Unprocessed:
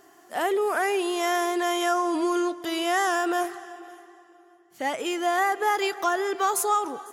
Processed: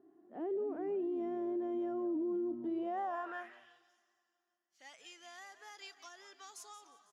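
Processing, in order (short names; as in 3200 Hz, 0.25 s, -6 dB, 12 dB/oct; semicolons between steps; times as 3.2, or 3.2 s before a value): tone controls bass +9 dB, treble -11 dB; frequency-shifting echo 0.178 s, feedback 30%, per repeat -110 Hz, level -14.5 dB; band-pass sweep 310 Hz -> 5600 Hz, 2.68–3.91; dynamic EQ 1400 Hz, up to -6 dB, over -48 dBFS, Q 1.3; limiter -25 dBFS, peak gain reduction 7 dB; gain -6 dB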